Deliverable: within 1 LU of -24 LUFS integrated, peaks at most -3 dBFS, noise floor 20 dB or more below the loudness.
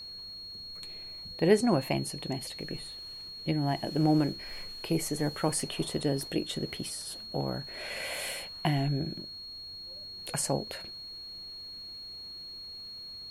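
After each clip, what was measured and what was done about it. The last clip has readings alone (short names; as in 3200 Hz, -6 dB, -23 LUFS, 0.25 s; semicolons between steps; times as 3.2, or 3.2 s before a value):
steady tone 4300 Hz; tone level -41 dBFS; loudness -33.0 LUFS; peak -10.5 dBFS; loudness target -24.0 LUFS
-> notch 4300 Hz, Q 30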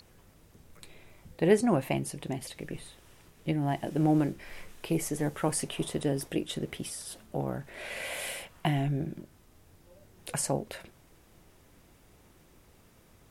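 steady tone none; loudness -31.5 LUFS; peak -11.0 dBFS; loudness target -24.0 LUFS
-> gain +7.5 dB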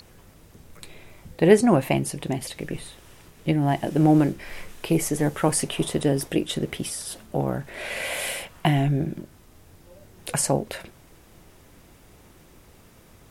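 loudness -24.0 LUFS; peak -3.5 dBFS; noise floor -53 dBFS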